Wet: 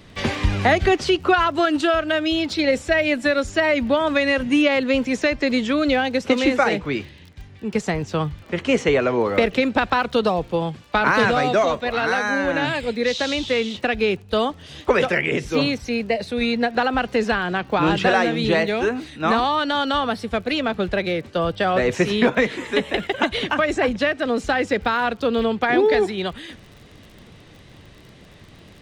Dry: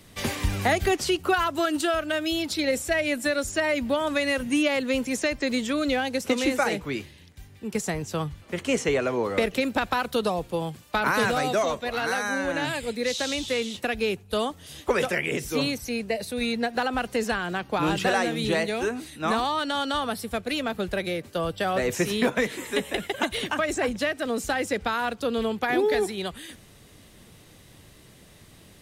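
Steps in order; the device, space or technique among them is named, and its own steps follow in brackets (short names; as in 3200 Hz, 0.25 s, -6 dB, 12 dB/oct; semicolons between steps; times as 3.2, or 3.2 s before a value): lo-fi chain (LPF 4200 Hz 12 dB/oct; wow and flutter 30 cents; crackle 26/s -43 dBFS); gain +6 dB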